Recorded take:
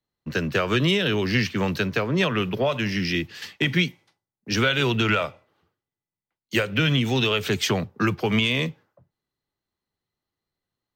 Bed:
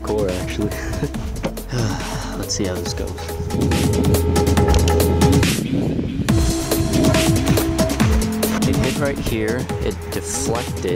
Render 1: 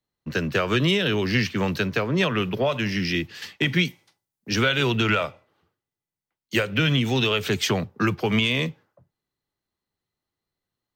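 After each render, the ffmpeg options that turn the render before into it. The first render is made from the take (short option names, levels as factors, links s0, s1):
-filter_complex "[0:a]asettb=1/sr,asplit=3[s0][s1][s2];[s0]atrim=end=3.854[s3];[s1]atrim=start=3.85:end=4.5,asetpts=PTS-STARTPTS,afade=t=in:d=0.004:c=qsin,afade=t=out:st=0.646:d=0.004:c=qsin,highshelf=f=4600:g=8.5[s4];[s2]atrim=start=4.496[s5];[s3][s4]acrossfade=d=0.004:c1=hsin:c2=qsin[s6];[s6][s5]acrossfade=d=0.004:c1=qsin:c2=hsin"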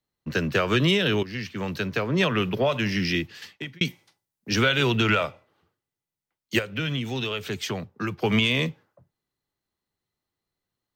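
-filter_complex "[0:a]asplit=5[s0][s1][s2][s3][s4];[s0]atrim=end=1.23,asetpts=PTS-STARTPTS,afade=t=out:st=1.226:d=0.004:c=hsin:silence=0.177828[s5];[s1]atrim=start=1.23:end=3.81,asetpts=PTS-STARTPTS,afade=t=in:d=1.03:silence=0.177828,afade=t=out:st=1.9:d=0.68[s6];[s2]atrim=start=3.81:end=6.592,asetpts=PTS-STARTPTS,afade=t=in:d=0.004:c=hsin[s7];[s3]atrim=start=6.588:end=8.222,asetpts=PTS-STARTPTS,volume=0.447[s8];[s4]atrim=start=8.218[s9];[s5][s6][s7]concat=n=3:v=0:a=1[s10];[s10][s8]acrossfade=d=0.004:c1=hsin:c2=hsin[s11];[s11][s9]acrossfade=d=0.004:c1=hsin:c2=hsin"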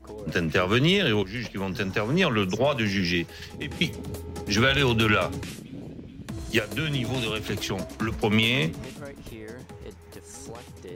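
-filter_complex "[1:a]volume=0.106[s0];[0:a][s0]amix=inputs=2:normalize=0"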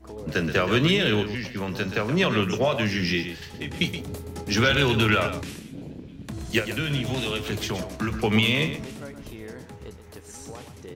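-filter_complex "[0:a]asplit=2[s0][s1];[s1]adelay=28,volume=0.237[s2];[s0][s2]amix=inputs=2:normalize=0,aecho=1:1:124:0.316"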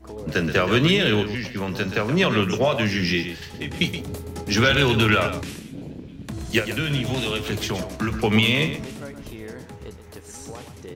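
-af "volume=1.33"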